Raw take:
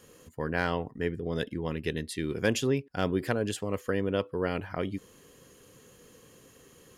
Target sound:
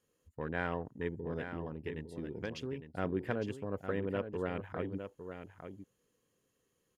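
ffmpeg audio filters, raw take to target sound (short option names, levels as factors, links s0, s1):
-filter_complex "[0:a]afwtdn=0.01,asettb=1/sr,asplit=3[s0][s1][s2];[s0]atrim=end=1.394[s3];[s1]atrim=start=1.39:end=2.86,asetpts=PTS-STARTPTS,afade=t=in:d=0.004:c=qsin,afade=t=out:st=1.466:d=0.004:c=qsin,acompressor=threshold=0.0316:ratio=6[s4];[s2]atrim=start=2.856[s5];[s3][s4]acrossfade=d=0.004:c1=hsin:c2=qsin[s6];[s6][s5]acrossfade=d=0.004:c1=qsin:c2=hsin,aecho=1:1:858:0.355,volume=0.473"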